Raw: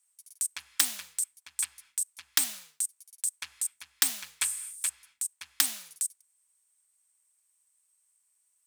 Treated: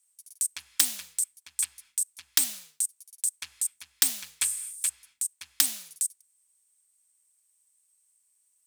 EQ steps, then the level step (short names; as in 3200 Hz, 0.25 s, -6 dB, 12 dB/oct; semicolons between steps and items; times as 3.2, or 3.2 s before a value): bell 1200 Hz -6.5 dB 2.4 oct; +3.0 dB